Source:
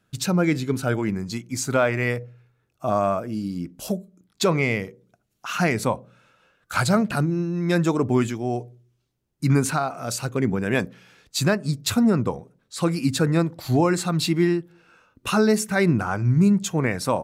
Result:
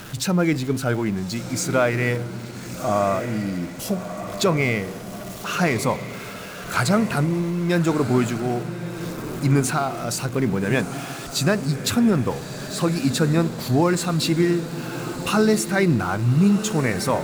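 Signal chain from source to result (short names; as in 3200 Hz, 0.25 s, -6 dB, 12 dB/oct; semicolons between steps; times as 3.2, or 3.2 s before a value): zero-crossing step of -32.5 dBFS; diffused feedback echo 1.292 s, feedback 46%, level -10.5 dB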